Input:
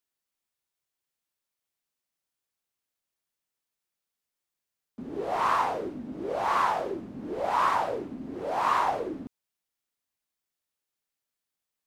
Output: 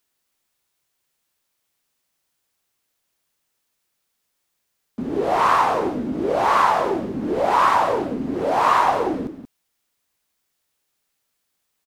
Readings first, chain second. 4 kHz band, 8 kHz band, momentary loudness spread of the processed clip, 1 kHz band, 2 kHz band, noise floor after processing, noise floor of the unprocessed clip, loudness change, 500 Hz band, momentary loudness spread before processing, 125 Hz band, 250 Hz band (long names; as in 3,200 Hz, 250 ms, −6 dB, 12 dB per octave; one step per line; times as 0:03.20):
+8.5 dB, +8.5 dB, 10 LU, +8.5 dB, +8.5 dB, −75 dBFS, below −85 dBFS, +9.0 dB, +10.0 dB, 13 LU, +11.0 dB, +11.5 dB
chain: in parallel at +2 dB: downward compressor, threshold −32 dBFS, peak gain reduction 11.5 dB
on the sum: single-tap delay 181 ms −10.5 dB
level +5 dB